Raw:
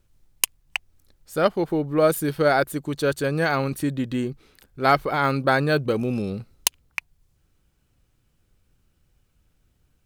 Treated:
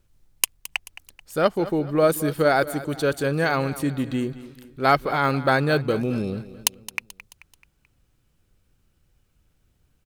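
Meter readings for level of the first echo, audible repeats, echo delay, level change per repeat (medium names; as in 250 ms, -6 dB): -16.0 dB, 3, 217 ms, -6.5 dB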